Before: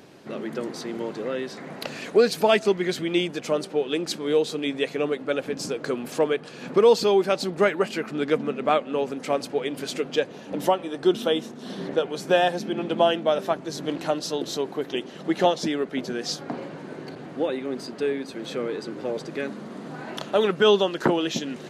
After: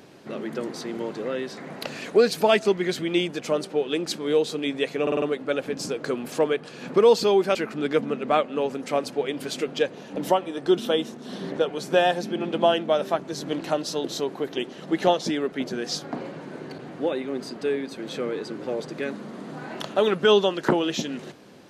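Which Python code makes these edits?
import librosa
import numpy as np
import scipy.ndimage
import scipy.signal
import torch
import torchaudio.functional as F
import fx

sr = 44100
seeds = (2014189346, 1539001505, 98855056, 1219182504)

y = fx.edit(x, sr, fx.stutter(start_s=5.02, slice_s=0.05, count=5),
    fx.cut(start_s=7.35, length_s=0.57), tone=tone)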